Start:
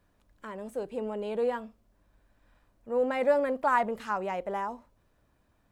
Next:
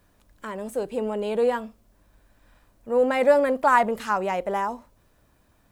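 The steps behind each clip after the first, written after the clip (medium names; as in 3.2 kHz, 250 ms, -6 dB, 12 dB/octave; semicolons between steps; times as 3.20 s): treble shelf 5.3 kHz +7 dB; trim +6.5 dB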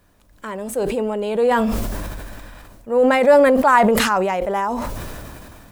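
decay stretcher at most 23 dB/s; trim +4 dB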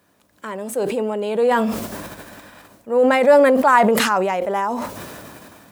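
high-pass 160 Hz 12 dB/octave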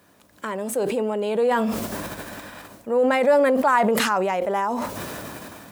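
compression 1.5:1, threshold -35 dBFS, peak gain reduction 9.5 dB; trim +4 dB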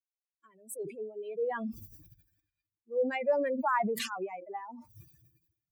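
expander on every frequency bin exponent 3; trim -7 dB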